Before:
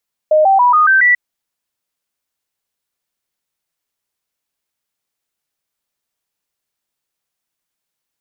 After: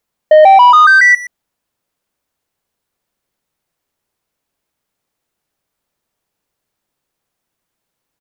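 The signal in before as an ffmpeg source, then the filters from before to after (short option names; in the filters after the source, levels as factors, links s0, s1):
-f lavfi -i "aevalsrc='0.447*clip(min(mod(t,0.14),0.14-mod(t,0.14))/0.005,0,1)*sin(2*PI*617*pow(2,floor(t/0.14)/3)*mod(t,0.14))':d=0.84:s=44100"
-filter_complex "[0:a]tiltshelf=f=1400:g=5,acontrast=68,asplit=2[s0][s1];[s1]adelay=120,highpass=300,lowpass=3400,asoftclip=type=hard:threshold=0.266,volume=0.224[s2];[s0][s2]amix=inputs=2:normalize=0"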